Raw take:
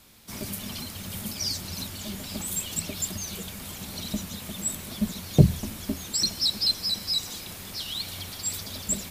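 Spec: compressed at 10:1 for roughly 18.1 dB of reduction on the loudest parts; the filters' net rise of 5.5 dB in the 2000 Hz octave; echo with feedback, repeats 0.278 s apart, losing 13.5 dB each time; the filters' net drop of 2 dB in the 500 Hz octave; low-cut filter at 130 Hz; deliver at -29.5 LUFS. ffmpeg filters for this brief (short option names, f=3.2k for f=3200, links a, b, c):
-af "highpass=130,equalizer=f=500:t=o:g=-3,equalizer=f=2k:t=o:g=7,acompressor=threshold=-30dB:ratio=10,aecho=1:1:278|556:0.211|0.0444,volume=4dB"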